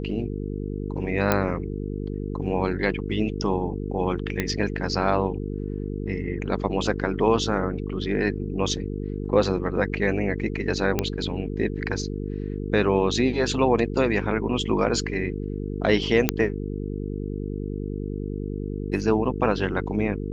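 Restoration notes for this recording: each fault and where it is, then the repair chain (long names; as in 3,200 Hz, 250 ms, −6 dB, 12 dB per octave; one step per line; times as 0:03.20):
mains buzz 50 Hz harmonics 9 −30 dBFS
0:01.32: click −6 dBFS
0:04.40: click −10 dBFS
0:10.99: click −8 dBFS
0:16.29: click −2 dBFS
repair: click removal
hum removal 50 Hz, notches 9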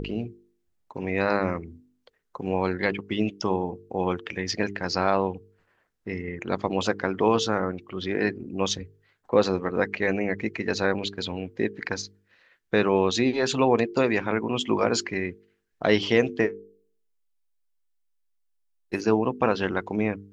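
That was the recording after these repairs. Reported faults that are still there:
none of them is left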